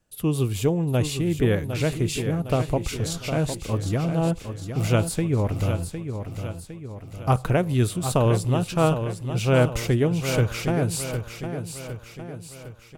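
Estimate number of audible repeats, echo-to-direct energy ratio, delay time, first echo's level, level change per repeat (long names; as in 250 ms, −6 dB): 5, −7.0 dB, 758 ms, −8.5 dB, −6.0 dB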